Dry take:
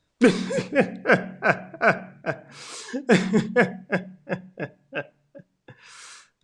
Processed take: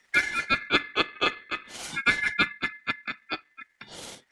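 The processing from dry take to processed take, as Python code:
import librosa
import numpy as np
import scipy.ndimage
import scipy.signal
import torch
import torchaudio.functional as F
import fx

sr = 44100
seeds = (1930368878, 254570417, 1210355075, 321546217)

y = x * np.sin(2.0 * np.pi * 1900.0 * np.arange(len(x)) / sr)
y = fx.stretch_grains(y, sr, factor=0.67, grain_ms=95.0)
y = fx.band_squash(y, sr, depth_pct=40)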